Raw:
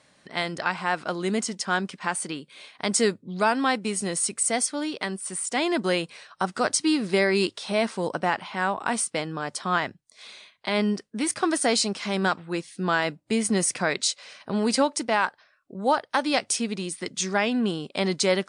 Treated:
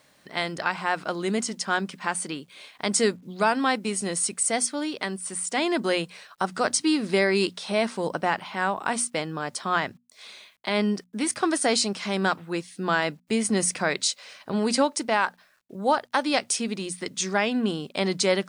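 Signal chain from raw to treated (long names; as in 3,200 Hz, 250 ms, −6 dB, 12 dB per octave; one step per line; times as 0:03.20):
bit reduction 11 bits
mains-hum notches 60/120/180/240 Hz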